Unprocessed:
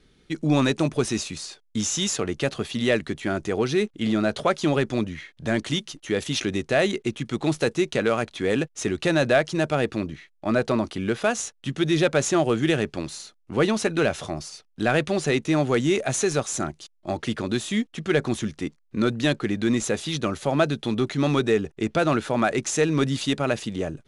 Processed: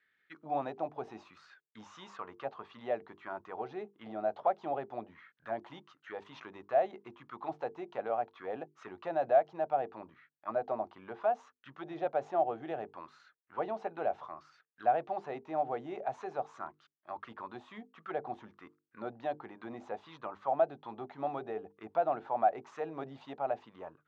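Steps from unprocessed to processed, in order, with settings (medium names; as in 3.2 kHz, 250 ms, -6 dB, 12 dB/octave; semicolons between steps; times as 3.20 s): low-pass 4.5 kHz 12 dB/octave; peaking EQ 99 Hz +6 dB 1.4 oct; hum notches 50/100/150/200/250/300/350/400/450 Hz; auto-wah 740–1800 Hz, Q 7, down, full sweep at -19 dBFS; trim +1.5 dB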